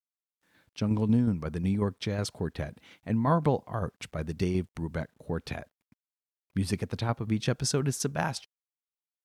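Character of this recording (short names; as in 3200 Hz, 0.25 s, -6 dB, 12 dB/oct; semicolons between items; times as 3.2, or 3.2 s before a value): tremolo saw down 5.5 Hz, depth 45%; a quantiser's noise floor 12-bit, dither none; MP3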